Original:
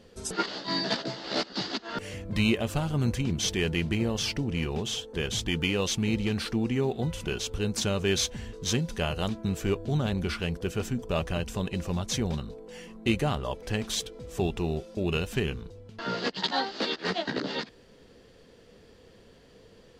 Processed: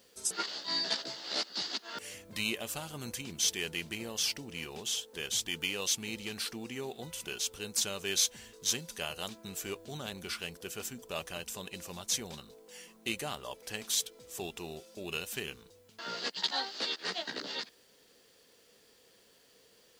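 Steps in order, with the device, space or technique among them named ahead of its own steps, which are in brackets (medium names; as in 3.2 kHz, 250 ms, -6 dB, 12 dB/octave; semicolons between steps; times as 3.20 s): turntable without a phono preamp (RIAA curve recording; white noise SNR 34 dB); trim -8 dB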